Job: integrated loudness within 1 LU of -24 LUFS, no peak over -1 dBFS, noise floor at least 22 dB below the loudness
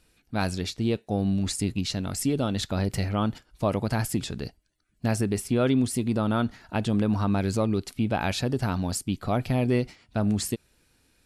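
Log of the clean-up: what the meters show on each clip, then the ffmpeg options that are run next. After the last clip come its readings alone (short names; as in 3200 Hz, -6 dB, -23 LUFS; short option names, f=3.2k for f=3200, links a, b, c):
loudness -27.5 LUFS; peak -12.0 dBFS; loudness target -24.0 LUFS
-> -af "volume=3.5dB"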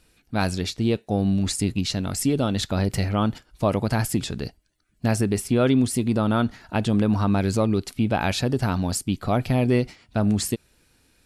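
loudness -24.0 LUFS; peak -8.5 dBFS; noise floor -63 dBFS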